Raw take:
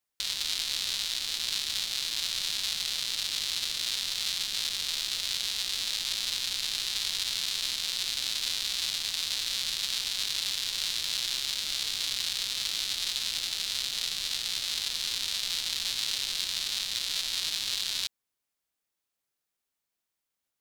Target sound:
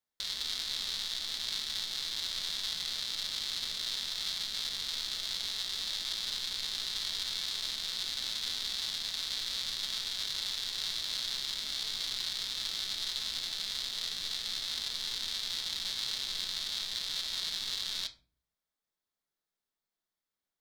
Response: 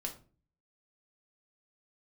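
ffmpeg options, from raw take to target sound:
-filter_complex "[0:a]asplit=2[link_01][link_02];[link_02]asuperstop=centerf=2800:order=8:qfactor=5.5[link_03];[1:a]atrim=start_sample=2205,lowpass=5200[link_04];[link_03][link_04]afir=irnorm=-1:irlink=0,volume=1.5dB[link_05];[link_01][link_05]amix=inputs=2:normalize=0,volume=-8.5dB"

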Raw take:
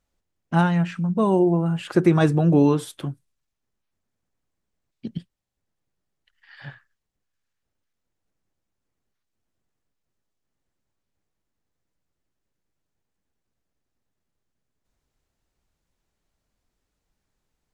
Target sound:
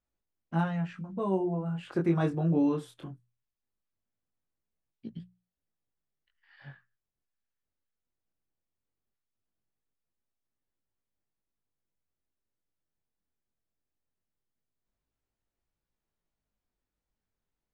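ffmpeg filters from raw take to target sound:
ffmpeg -i in.wav -af "flanger=delay=17.5:depth=7:speed=0.19,highshelf=frequency=4700:gain=-9.5,bandreject=frequency=60:width_type=h:width=6,bandreject=frequency=120:width_type=h:width=6,bandreject=frequency=180:width_type=h:width=6,volume=-7dB" out.wav

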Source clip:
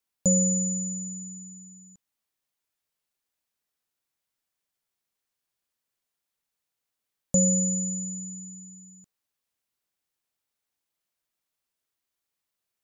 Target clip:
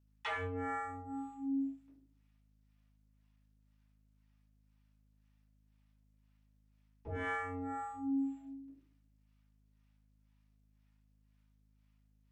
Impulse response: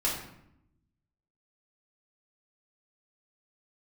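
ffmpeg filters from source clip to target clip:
-filter_complex "[0:a]agate=range=-14dB:threshold=-46dB:ratio=16:detection=peak,bandreject=frequency=60:width_type=h:width=6,bandreject=frequency=120:width_type=h:width=6,bandreject=frequency=180:width_type=h:width=6,bandreject=frequency=240:width_type=h:width=6,bandreject=frequency=300:width_type=h:width=6,bandreject=frequency=360:width_type=h:width=6,bandreject=frequency=420:width_type=h:width=6,bandreject=frequency=480:width_type=h:width=6,bandreject=frequency=540:width_type=h:width=6,areverse,acompressor=threshold=-31dB:ratio=16,areverse,highpass=frequency=200:width_type=q:width=0.5412,highpass=frequency=200:width_type=q:width=1.307,lowpass=frequency=3000:width_type=q:width=0.5176,lowpass=frequency=3000:width_type=q:width=0.7071,lowpass=frequency=3000:width_type=q:width=1.932,afreqshift=75,aeval=exprs='0.02*sin(PI/2*4.47*val(0)/0.02)':channel_layout=same,acrossover=split=530[link_01][link_02];[link_01]aeval=exprs='val(0)*(1-1/2+1/2*cos(2*PI*1.9*n/s))':channel_layout=same[link_03];[link_02]aeval=exprs='val(0)*(1-1/2-1/2*cos(2*PI*1.9*n/s))':channel_layout=same[link_04];[link_03][link_04]amix=inputs=2:normalize=0[link_05];[1:a]atrim=start_sample=2205,asetrate=83790,aresample=44100[link_06];[link_05][link_06]afir=irnorm=-1:irlink=0,aeval=exprs='val(0)+0.000316*(sin(2*PI*50*n/s)+sin(2*PI*2*50*n/s)/2+sin(2*PI*3*50*n/s)/3+sin(2*PI*4*50*n/s)/4+sin(2*PI*5*50*n/s)/5)':channel_layout=same,asetrate=45938,aresample=44100,volume=1dB" -ar 48000 -c:a sbc -b:a 128k

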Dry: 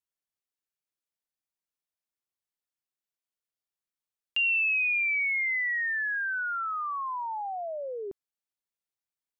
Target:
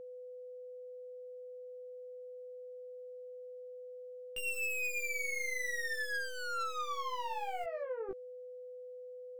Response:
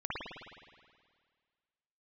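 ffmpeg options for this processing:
-filter_complex "[0:a]asplit=2[link_01][link_02];[link_02]aeval=exprs='(mod(39.8*val(0)+1,2)-1)/39.8':channel_layout=same,volume=-11.5dB[link_03];[link_01][link_03]amix=inputs=2:normalize=0,aeval=exprs='(tanh(63.1*val(0)+0.45)-tanh(0.45))/63.1':channel_layout=same,asettb=1/sr,asplit=3[link_04][link_05][link_06];[link_04]atrim=end=7.644[link_07];[link_05]atrim=start=7.64:end=8.09,asetpts=PTS-STARTPTS,afade=type=in:duration=0.004:curve=qsin,afade=type=out:start_time=0.446:duration=0.004:curve=qsin,highpass=340,lowpass=2000[link_08];[link_06]atrim=start=8.086[link_09];[link_07][link_08]acrossfade=duration=0.004:curve1=hsin:curve2=qsin[link_10];[link_10][link_09]acrossfade=duration=0.004:curve1=qsin:curve2=hsin,flanger=delay=15.5:depth=4.4:speed=0.5,aeval=exprs='val(0)+0.00447*sin(2*PI*500*n/s)':channel_layout=same,volume=2dB"

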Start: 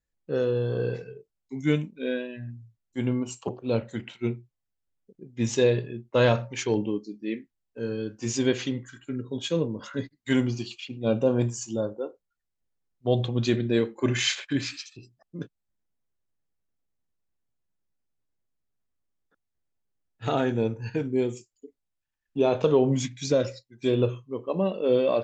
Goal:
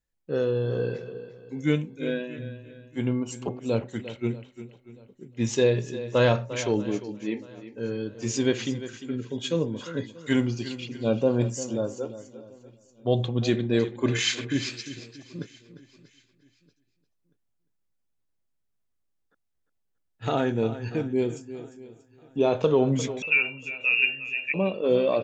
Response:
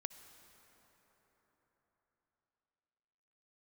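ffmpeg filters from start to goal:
-filter_complex "[0:a]asplit=2[link_01][link_02];[link_02]aecho=0:1:350:0.211[link_03];[link_01][link_03]amix=inputs=2:normalize=0,asettb=1/sr,asplit=3[link_04][link_05][link_06];[link_04]atrim=end=23.224[link_07];[link_05]atrim=start=23.22:end=24.54,asetpts=PTS-STARTPTS,afade=type=in:duration=0.004:curve=qsin,afade=type=out:start_time=1.316:duration=0.004:curve=qsin,lowpass=frequency=2500:width_type=q:width=0.5098,lowpass=frequency=2500:width_type=q:width=0.6013,lowpass=frequency=2500:width_type=q:width=0.9,lowpass=frequency=2500:width_type=q:width=2.563,afreqshift=-2900[link_08];[link_06]atrim=start=24.536[link_09];[link_07][link_08]acrossfade=duration=0.004:curve1=hsin:curve2=qsin[link_10];[link_10][link_09]acrossfade=duration=0.004:curve1=qsin:curve2=hsin,asplit=2[link_11][link_12];[link_12]aecho=0:1:635|1270|1905:0.0944|0.0397|0.0167[link_13];[link_11][link_13]amix=inputs=2:normalize=0"

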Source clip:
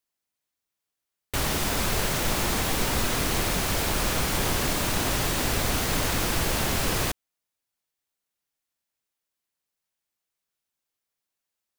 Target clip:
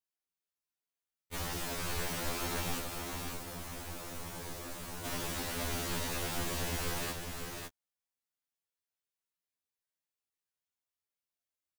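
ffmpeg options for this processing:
ffmpeg -i in.wav -filter_complex "[0:a]asettb=1/sr,asplit=3[link_01][link_02][link_03];[link_01]atrim=end=2.794[link_04];[link_02]atrim=start=2.79:end=5.05,asetpts=PTS-STARTPTS,afade=type=in:duration=0.004:curve=qsin,afade=type=out:start_time=2.256:duration=0.004:curve=qsin,acrossover=split=220|1500|5900[link_05][link_06][link_07][link_08];[link_05]acompressor=threshold=-36dB:ratio=4[link_09];[link_06]acompressor=threshold=-37dB:ratio=4[link_10];[link_07]acompressor=threshold=-44dB:ratio=4[link_11];[link_08]acompressor=threshold=-38dB:ratio=4[link_12];[link_09][link_10][link_11][link_12]amix=inputs=4:normalize=0[link_13];[link_03]atrim=start=5.046[link_14];[link_04][link_13]acrossfade=duration=0.004:curve1=hsin:curve2=qsin[link_15];[link_15][link_14]acrossfade=duration=0.004:curve1=qsin:curve2=hsin,aecho=1:1:554:0.562,afftfilt=real='re*2*eq(mod(b,4),0)':imag='im*2*eq(mod(b,4),0)':win_size=2048:overlap=0.75,volume=-9dB" out.wav

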